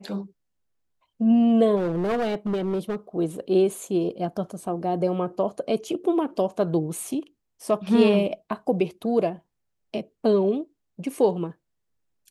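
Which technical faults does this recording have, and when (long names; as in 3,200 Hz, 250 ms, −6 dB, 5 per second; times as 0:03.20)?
0:01.76–0:02.96: clipping −21.5 dBFS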